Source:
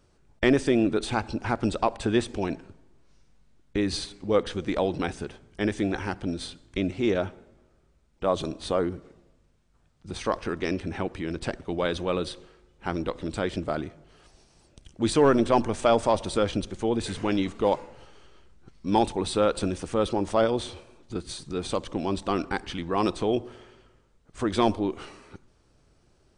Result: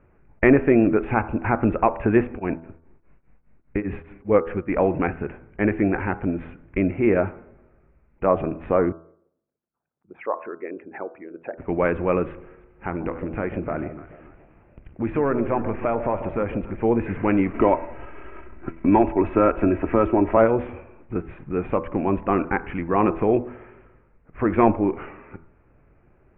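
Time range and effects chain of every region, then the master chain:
2.3–4.79 echo 0.159 s -23.5 dB + beating tremolo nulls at 4.9 Hz
8.92–11.58 formant sharpening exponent 2 + HPF 610 Hz + air absorption 400 m
12.32–16.82 compressor 2:1, threshold -30 dBFS + echo with dull and thin repeats by turns 0.144 s, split 820 Hz, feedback 56%, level -10 dB
17.53–20.37 expander -48 dBFS + comb 3.1 ms, depth 56% + three-band squash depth 70%
whole clip: steep low-pass 2500 Hz 72 dB/oct; de-hum 82.16 Hz, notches 19; gain +6 dB

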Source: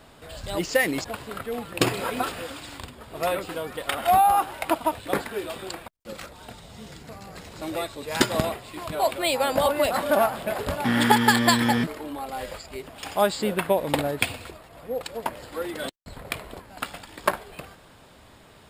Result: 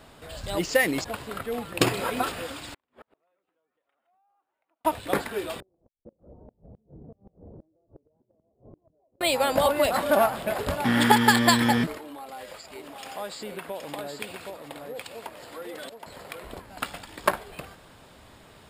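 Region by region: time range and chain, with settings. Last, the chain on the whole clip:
2.74–4.85 three-band isolator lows -17 dB, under 220 Hz, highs -15 dB, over 2800 Hz + compressor 2:1, threshold -43 dBFS + flipped gate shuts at -36 dBFS, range -38 dB
5.6–9.21 inverse Chebyshev low-pass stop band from 2600 Hz, stop band 70 dB + compressor, threshold -41 dBFS + flipped gate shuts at -37 dBFS, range -26 dB
11.98–16.43 HPF 280 Hz 6 dB/oct + compressor 2:1, threshold -41 dBFS + echo 0.771 s -4.5 dB
whole clip: dry

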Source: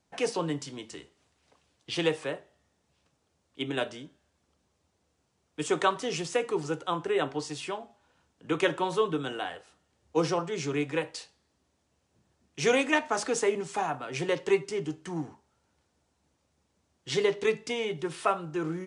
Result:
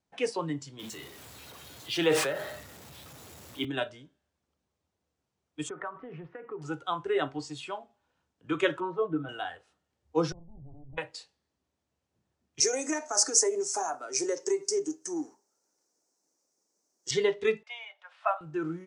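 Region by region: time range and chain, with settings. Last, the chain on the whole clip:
0.79–3.65 zero-crossing step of -35 dBFS + HPF 140 Hz + sustainer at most 39 dB/s
5.69–6.62 LPF 1900 Hz 24 dB/oct + compressor 16:1, threshold -30 dBFS
8.8–9.29 Bessel low-pass 900 Hz + low shelf 330 Hz -5 dB + comb 6.1 ms, depth 99%
10.32–10.98 minimum comb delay 1.1 ms + Gaussian blur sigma 16 samples + compressor 4:1, threshold -41 dBFS
12.6–17.11 compressor, threshold -27 dBFS + resonant high-pass 350 Hz, resonance Q 1.6 + resonant high shelf 4400 Hz +10.5 dB, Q 3
17.63–18.41 steep high-pass 580 Hz 72 dB/oct + low-pass opened by the level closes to 2800 Hz, open at -24 dBFS + high shelf 2200 Hz -6.5 dB
whole clip: high shelf 8800 Hz -6 dB; spectral noise reduction 9 dB

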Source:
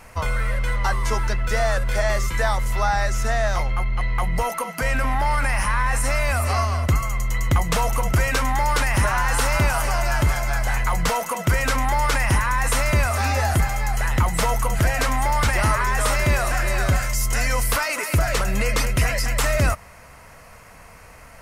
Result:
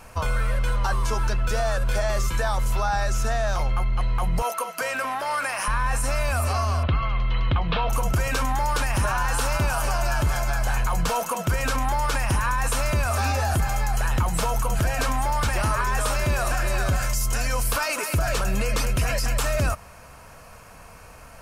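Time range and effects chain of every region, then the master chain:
4.42–5.68 HPF 410 Hz + notch 850 Hz, Q 8.9
6.83–7.9 steep low-pass 3800 Hz 48 dB/oct + high shelf 2800 Hz +10.5 dB + short-mantissa float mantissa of 8-bit
whole clip: notch 2000 Hz, Q 5.4; limiter -15 dBFS

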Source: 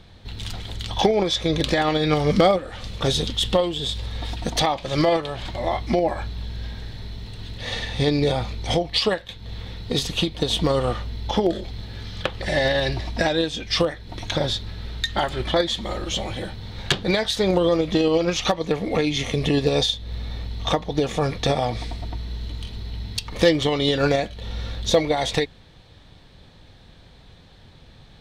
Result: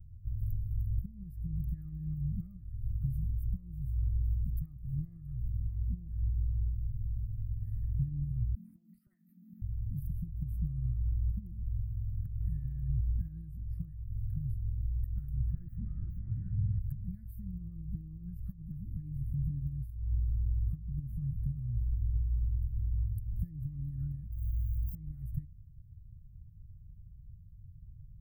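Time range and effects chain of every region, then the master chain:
8.55–9.62 frequency shift +160 Hz + compressor, threshold -29 dBFS + bell 2000 Hz +6 dB 1.3 oct
15.5–16.79 overdrive pedal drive 35 dB, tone 3100 Hz, clips at -7 dBFS + air absorption 440 m
24.32–24.95 compressor 4:1, threshold -27 dBFS + air absorption 99 m + careless resampling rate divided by 8×, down none, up hold
whole clip: compressor, threshold -21 dBFS; inverse Chebyshev band-stop 420–6700 Hz, stop band 60 dB; band shelf 1300 Hz +11 dB 1.3 oct

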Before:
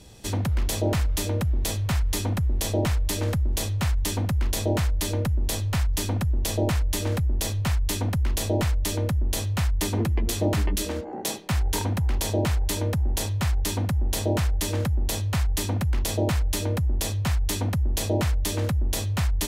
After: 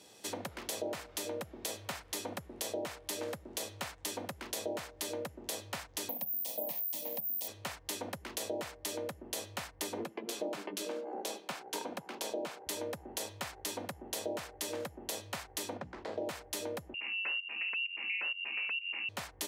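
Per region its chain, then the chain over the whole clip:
6.09–7.48 fixed phaser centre 380 Hz, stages 6 + de-hum 108 Hz, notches 8 + careless resampling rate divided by 3×, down filtered, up zero stuff
10.04–12.67 HPF 160 Hz 24 dB/oct + high shelf 6900 Hz -6.5 dB + notch 1900 Hz, Q 11
15.77–16.26 median filter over 15 samples + air absorption 110 m + notches 60/120/180/240/300 Hz
16.94–19.09 pump 130 bpm, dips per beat 1, -17 dB, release 0.315 s + inverted band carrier 2800 Hz
whole clip: HPF 340 Hz 12 dB/oct; dynamic EQ 530 Hz, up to +5 dB, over -42 dBFS, Q 2; compressor 3:1, threshold -32 dBFS; gain -4.5 dB

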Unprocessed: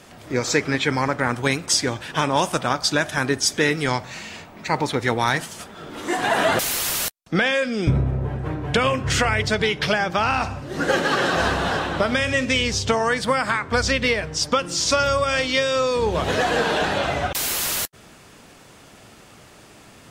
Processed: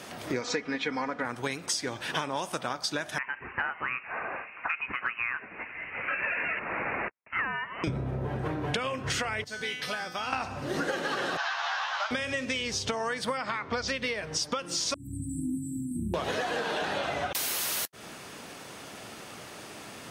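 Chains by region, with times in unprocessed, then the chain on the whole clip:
0.41–1.25 air absorption 99 m + comb 4.1 ms, depth 67%
3.18–7.84 HPF 920 Hz 24 dB/oct + inverted band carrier 3400 Hz
9.44–10.33 high shelf 7200 Hz +11 dB + resonator 250 Hz, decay 0.58 s, mix 90%
11.37–12.11 CVSD 32 kbps + steep high-pass 790 Hz + doubler 13 ms -3.5 dB
13.37–13.88 LPF 6000 Hz 24 dB/oct + notch 1600 Hz, Q 9
14.94–16.14 brick-wall FIR band-stop 350–7300 Hz + bell 6500 Hz -6 dB 0.87 oct
whole clip: HPF 210 Hz 6 dB/oct; notch 7400 Hz, Q 14; compressor 10:1, threshold -32 dBFS; gain +4 dB

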